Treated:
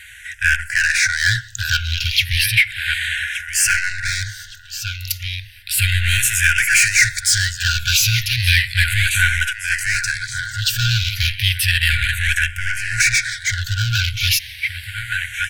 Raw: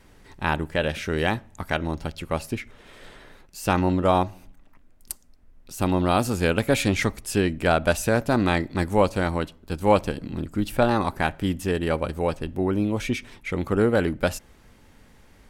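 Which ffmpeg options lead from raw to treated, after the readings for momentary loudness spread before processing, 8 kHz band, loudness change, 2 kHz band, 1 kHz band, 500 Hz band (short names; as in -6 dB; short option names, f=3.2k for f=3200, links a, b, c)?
10 LU, +18.5 dB, +7.5 dB, +15.0 dB, -5.5 dB, under -40 dB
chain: -filter_complex "[0:a]asplit=2[a][b];[b]aecho=0:1:1169|2338|3507:0.178|0.0622|0.0218[c];[a][c]amix=inputs=2:normalize=0,dynaudnorm=f=240:g=7:m=7dB,asplit=2[d][e];[e]highpass=f=720:p=1,volume=29dB,asoftclip=type=tanh:threshold=-1.5dB[f];[d][f]amix=inputs=2:normalize=0,lowpass=f=7.4k:p=1,volume=-6dB,afftfilt=real='re*(1-between(b*sr/4096,120,1400))':imag='im*(1-between(b*sr/4096,120,1400))':win_size=4096:overlap=0.75,asplit=2[g][h];[h]afreqshift=-0.33[i];[g][i]amix=inputs=2:normalize=1,volume=1.5dB"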